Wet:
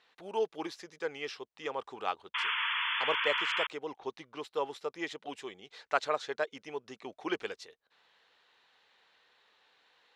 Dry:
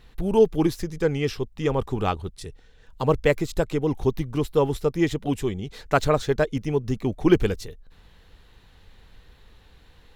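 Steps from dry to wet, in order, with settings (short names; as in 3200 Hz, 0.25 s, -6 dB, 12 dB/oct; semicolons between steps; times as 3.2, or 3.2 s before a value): 2.34–3.67 painted sound noise 880–3500 Hz -26 dBFS; 3.96–4.44 low-pass opened by the level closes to 2100 Hz, open at -17.5 dBFS; BPF 680–5400 Hz; gain -6 dB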